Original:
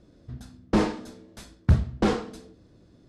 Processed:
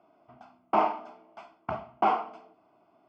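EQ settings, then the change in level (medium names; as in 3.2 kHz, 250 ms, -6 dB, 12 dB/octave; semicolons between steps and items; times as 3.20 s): resonant high-pass 650 Hz, resonance Q 4.9; distance through air 460 m; static phaser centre 2.6 kHz, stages 8; +5.5 dB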